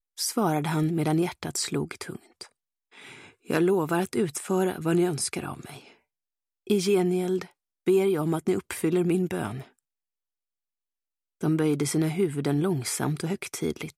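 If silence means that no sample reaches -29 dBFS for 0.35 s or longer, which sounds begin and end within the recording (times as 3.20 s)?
3.50–5.69 s
6.70–7.42 s
7.87–9.60 s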